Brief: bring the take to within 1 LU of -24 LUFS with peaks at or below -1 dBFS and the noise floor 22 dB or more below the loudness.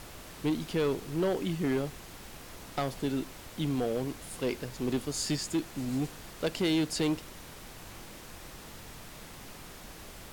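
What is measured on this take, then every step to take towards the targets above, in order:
clipped samples 1.5%; clipping level -23.5 dBFS; noise floor -48 dBFS; noise floor target -55 dBFS; loudness -32.5 LUFS; peak level -23.5 dBFS; loudness target -24.0 LUFS
-> clip repair -23.5 dBFS; noise print and reduce 7 dB; trim +8.5 dB

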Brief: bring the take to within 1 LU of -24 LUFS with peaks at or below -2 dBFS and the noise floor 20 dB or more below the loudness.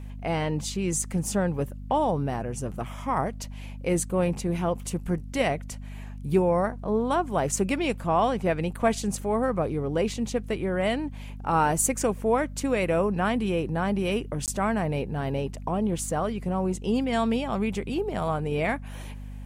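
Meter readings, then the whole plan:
dropouts 1; longest dropout 18 ms; hum 50 Hz; highest harmonic 250 Hz; hum level -36 dBFS; loudness -27.0 LUFS; peak level -8.5 dBFS; loudness target -24.0 LUFS
-> interpolate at 14.46 s, 18 ms; de-hum 50 Hz, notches 5; trim +3 dB

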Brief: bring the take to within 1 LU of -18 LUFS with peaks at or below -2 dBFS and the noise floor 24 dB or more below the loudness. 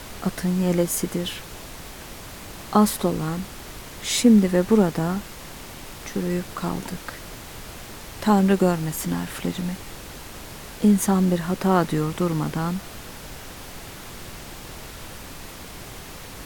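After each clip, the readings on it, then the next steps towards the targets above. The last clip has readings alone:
noise floor -40 dBFS; noise floor target -47 dBFS; loudness -22.5 LUFS; peak level -4.5 dBFS; loudness target -18.0 LUFS
-> noise print and reduce 7 dB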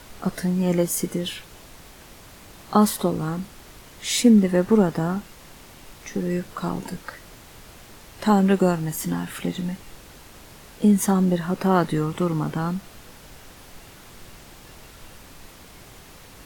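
noise floor -46 dBFS; noise floor target -47 dBFS
-> noise print and reduce 6 dB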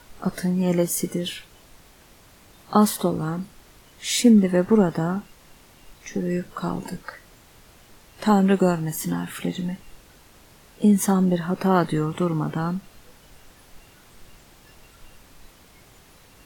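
noise floor -52 dBFS; loudness -22.5 LUFS; peak level -5.0 dBFS; loudness target -18.0 LUFS
-> trim +4.5 dB; peak limiter -2 dBFS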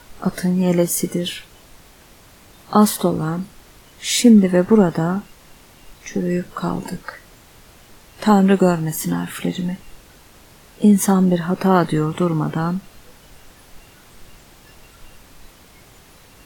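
loudness -18.0 LUFS; peak level -2.0 dBFS; noise floor -48 dBFS

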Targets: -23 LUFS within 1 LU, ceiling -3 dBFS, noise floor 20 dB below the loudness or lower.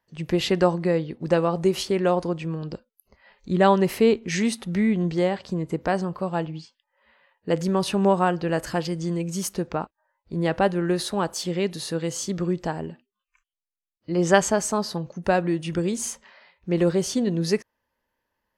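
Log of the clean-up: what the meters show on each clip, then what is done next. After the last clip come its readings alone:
loudness -24.5 LUFS; peak level -3.0 dBFS; loudness target -23.0 LUFS
-> trim +1.5 dB; peak limiter -3 dBFS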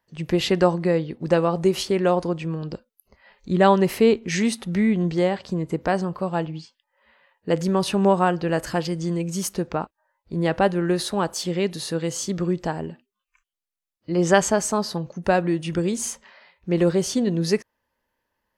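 loudness -23.0 LUFS; peak level -3.0 dBFS; noise floor -82 dBFS

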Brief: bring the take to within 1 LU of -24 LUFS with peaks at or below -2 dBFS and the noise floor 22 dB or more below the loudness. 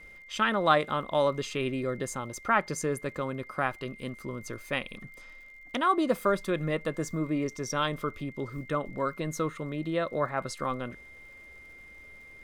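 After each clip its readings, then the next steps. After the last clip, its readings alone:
tick rate 54 per s; steady tone 2.1 kHz; tone level -48 dBFS; loudness -30.5 LUFS; peak level -9.0 dBFS; loudness target -24.0 LUFS
-> de-click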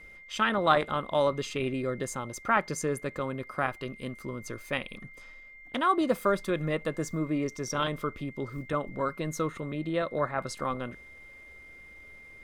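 tick rate 1.0 per s; steady tone 2.1 kHz; tone level -48 dBFS
-> band-stop 2.1 kHz, Q 30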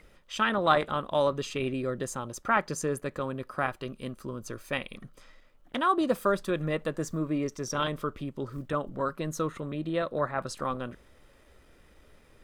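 steady tone not found; loudness -30.5 LUFS; peak level -9.5 dBFS; loudness target -24.0 LUFS
-> trim +6.5 dB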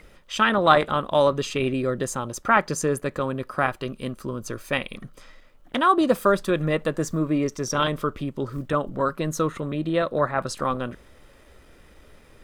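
loudness -24.0 LUFS; peak level -3.0 dBFS; noise floor -52 dBFS

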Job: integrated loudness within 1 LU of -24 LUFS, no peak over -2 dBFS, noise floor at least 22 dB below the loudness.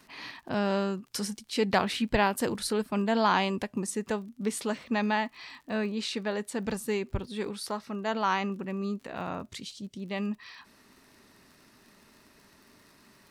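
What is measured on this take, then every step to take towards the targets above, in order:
tick rate 46 per s; loudness -31.0 LUFS; peak level -12.0 dBFS; loudness target -24.0 LUFS
-> de-click; trim +7 dB

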